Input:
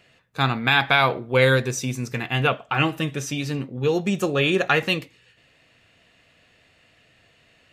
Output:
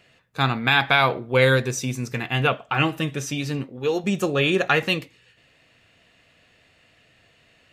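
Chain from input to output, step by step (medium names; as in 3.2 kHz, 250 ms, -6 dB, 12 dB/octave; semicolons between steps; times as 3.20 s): 3.63–4.04 s: peaking EQ 140 Hz -9.5 dB 1.5 oct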